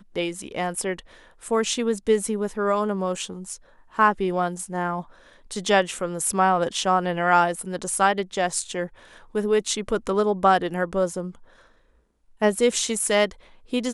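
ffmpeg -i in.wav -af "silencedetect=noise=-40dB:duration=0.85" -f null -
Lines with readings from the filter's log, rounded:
silence_start: 11.35
silence_end: 12.41 | silence_duration: 1.06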